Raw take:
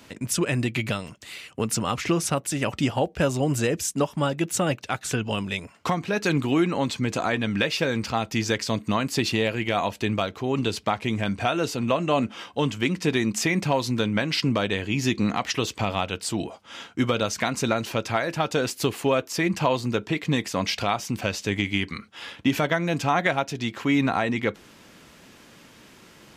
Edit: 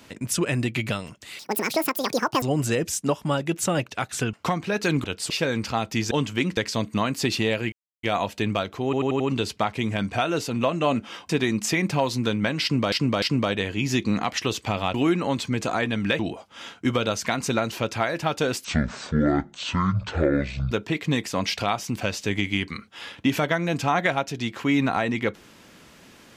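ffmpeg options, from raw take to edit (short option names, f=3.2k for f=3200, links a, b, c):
-filter_complex "[0:a]asplit=20[a][b][c][d][e][f][g][h][i][j][k][l][m][n][o][p][q][r][s][t];[a]atrim=end=1.394[u];[b]atrim=start=1.39:end=3.34,asetpts=PTS-STARTPTS,asetrate=83349,aresample=44100[v];[c]atrim=start=3.336:end=5.252[w];[d]atrim=start=5.738:end=6.452[x];[e]atrim=start=16.068:end=16.332[y];[f]atrim=start=7.698:end=8.512[z];[g]atrim=start=12.558:end=13.022[aa];[h]atrim=start=8.508:end=9.66,asetpts=PTS-STARTPTS,afade=t=out:st=1.148:d=0.004:c=hsin,apad=pad_dur=0.31[ab];[i]atrim=start=9.66:end=10.562,asetpts=PTS-STARTPTS,afade=t=in:d=0.004:c=hsin[ac];[j]atrim=start=10.468:end=10.562[ad];[k]atrim=start=10.468:end=10.562[ae];[l]atrim=start=10.468:end=10.562[af];[m]atrim=start=10.468:end=12.562[ag];[n]atrim=start=13.018:end=14.652[ah];[o]atrim=start=14.348:end=14.652[ai];[p]atrim=start=14.348:end=16.072[aj];[q]atrim=start=6.448:end=7.702[ak];[r]atrim=start=16.328:end=18.784[al];[s]atrim=start=18.78:end=19.92,asetpts=PTS-STARTPTS,asetrate=24255,aresample=44100,atrim=end_sample=91407,asetpts=PTS-STARTPTS[am];[t]atrim=start=19.916[an];[u][v]acrossfade=d=0.004:c1=hsin:c2=hsin[ao];[ao][w]acrossfade=d=0.004:c1=hsin:c2=hsin[ap];[ap][x]acrossfade=d=0.004:c1=hsin:c2=hsin[aq];[aq][y]acrossfade=d=0.004:c1=hsin:c2=hsin[ar];[ar][z]acrossfade=d=0.004:c1=hsin:c2=hsin[as];[as][aa]acrossfade=d=0.004:c1=hsin:c2=hsin[at];[ab][ac]concat=n=2:v=0:a=1[au];[at][au]acrossfade=d=0.004:c1=hsin:c2=hsin[av];[av][ad]acrossfade=d=0.004:c1=hsin:c2=hsin[aw];[aw][ae]acrossfade=d=0.004:c1=hsin:c2=hsin[ax];[ax][af]acrossfade=d=0.004:c1=hsin:c2=hsin[ay];[ay][ag]acrossfade=d=0.004:c1=hsin:c2=hsin[az];[az][ah]acrossfade=d=0.004:c1=hsin:c2=hsin[ba];[ba][ai]acrossfade=d=0.004:c1=hsin:c2=hsin[bb];[bb][aj]acrossfade=d=0.004:c1=hsin:c2=hsin[bc];[bc][ak]acrossfade=d=0.004:c1=hsin:c2=hsin[bd];[bd][al]acrossfade=d=0.004:c1=hsin:c2=hsin[be];[be][am]acrossfade=d=0.004:c1=hsin:c2=hsin[bf];[bf][an]acrossfade=d=0.004:c1=hsin:c2=hsin"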